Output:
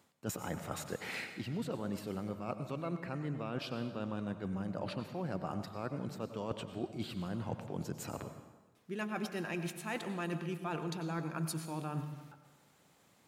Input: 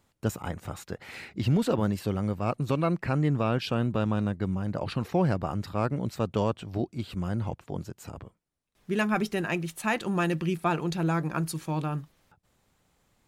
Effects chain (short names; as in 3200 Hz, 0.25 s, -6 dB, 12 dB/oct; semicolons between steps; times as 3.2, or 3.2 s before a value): HPF 150 Hz 12 dB/oct; reverse; compressor 12:1, threshold -38 dBFS, peak gain reduction 19 dB; reverse; plate-style reverb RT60 1.2 s, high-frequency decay 0.85×, pre-delay 80 ms, DRR 8.5 dB; gain +3 dB